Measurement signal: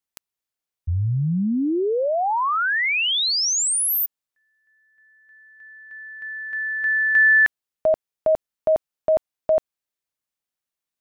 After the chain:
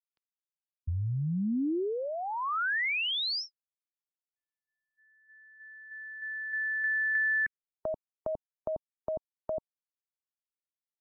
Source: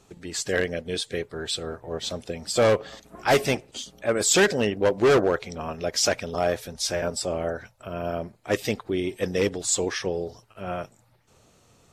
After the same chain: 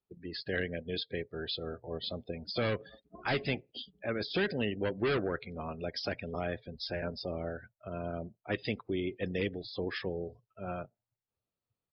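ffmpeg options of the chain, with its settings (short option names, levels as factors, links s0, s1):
-filter_complex "[0:a]acrossover=split=340|1400[s0][s1][s2];[s0]acompressor=threshold=0.0562:ratio=4[s3];[s1]acompressor=threshold=0.02:ratio=4[s4];[s2]acompressor=threshold=0.0501:ratio=4[s5];[s3][s4][s5]amix=inputs=3:normalize=0,aresample=11025,aresample=44100,afftdn=nr=30:nf=-39,volume=0.562"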